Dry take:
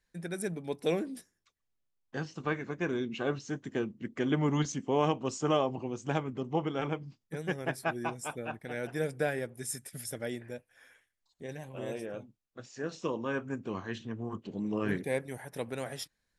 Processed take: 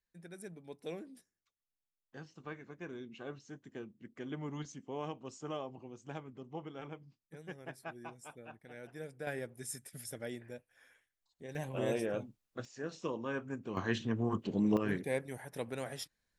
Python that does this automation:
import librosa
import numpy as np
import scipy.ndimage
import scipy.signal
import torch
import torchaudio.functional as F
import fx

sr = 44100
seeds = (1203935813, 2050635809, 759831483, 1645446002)

y = fx.gain(x, sr, db=fx.steps((0.0, -13.0), (9.27, -5.5), (11.55, 4.0), (12.65, -4.5), (13.77, 4.5), (14.77, -3.0)))